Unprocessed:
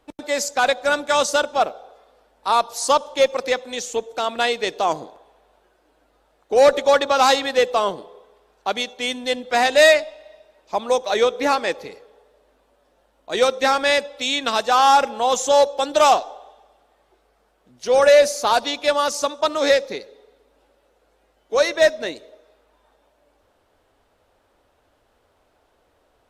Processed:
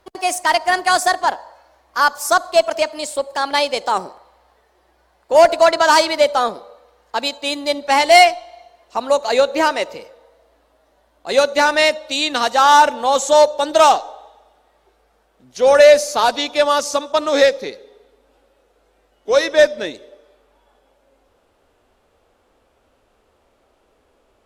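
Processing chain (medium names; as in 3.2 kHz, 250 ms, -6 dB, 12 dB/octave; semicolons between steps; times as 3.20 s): gliding tape speed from 127% -> 88%; harmonic-percussive split percussive -3 dB; trim +4 dB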